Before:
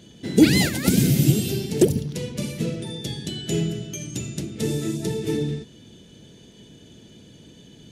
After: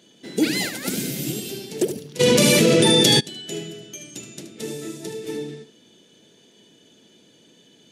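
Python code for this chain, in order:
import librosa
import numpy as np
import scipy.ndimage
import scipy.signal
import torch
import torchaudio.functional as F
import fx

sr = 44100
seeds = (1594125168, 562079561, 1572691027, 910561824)

y = scipy.signal.sosfilt(scipy.signal.bessel(2, 350.0, 'highpass', norm='mag', fs=sr, output='sos'), x)
y = y + 10.0 ** (-10.0 / 20.0) * np.pad(y, (int(75 * sr / 1000.0), 0))[:len(y)]
y = fx.env_flatten(y, sr, amount_pct=100, at=(2.19, 3.19), fade=0.02)
y = y * librosa.db_to_amplitude(-2.5)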